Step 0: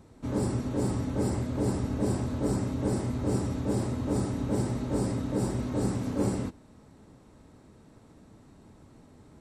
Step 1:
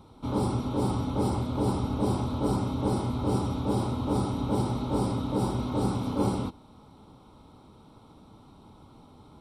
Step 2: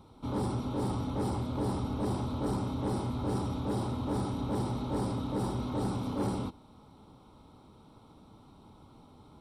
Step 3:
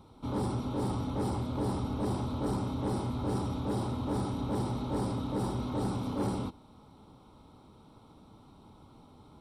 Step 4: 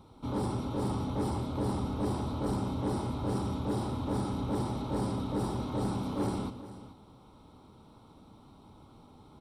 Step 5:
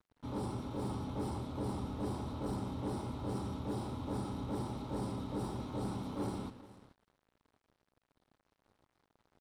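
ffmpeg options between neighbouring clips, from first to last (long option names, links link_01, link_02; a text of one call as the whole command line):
ffmpeg -i in.wav -af "superequalizer=9b=2.24:10b=1.78:11b=0.316:13b=2.24:15b=0.355,volume=1dB" out.wav
ffmpeg -i in.wav -af "asoftclip=type=tanh:threshold=-21.5dB,volume=-3dB" out.wav
ffmpeg -i in.wav -af anull out.wav
ffmpeg -i in.wav -af "aecho=1:1:114|431:0.266|0.178" out.wav
ffmpeg -i in.wav -af "aeval=exprs='sgn(val(0))*max(abs(val(0))-0.00299,0)':channel_layout=same,volume=-5.5dB" out.wav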